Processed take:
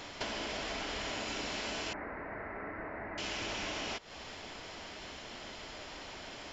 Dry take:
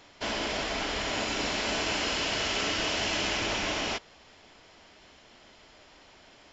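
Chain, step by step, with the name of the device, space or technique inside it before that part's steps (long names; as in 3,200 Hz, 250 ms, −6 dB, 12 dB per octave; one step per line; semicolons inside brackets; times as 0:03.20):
serial compression, peaks first (downward compressor, threshold −39 dBFS, peak gain reduction 12 dB; downward compressor 2 to 1, threshold −49 dBFS, peak gain reduction 7 dB)
0:01.93–0:03.18: elliptic low-pass filter 2,000 Hz, stop band 40 dB
level +9 dB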